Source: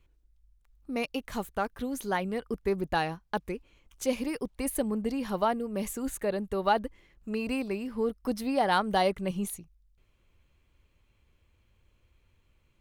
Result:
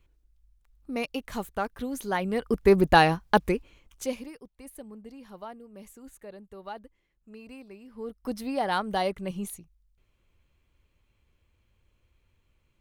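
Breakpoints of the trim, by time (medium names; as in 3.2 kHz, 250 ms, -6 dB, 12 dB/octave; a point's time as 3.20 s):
2.10 s +0.5 dB
2.73 s +10.5 dB
3.45 s +10.5 dB
4.08 s -2 dB
4.40 s -14.5 dB
7.80 s -14.5 dB
8.29 s -2 dB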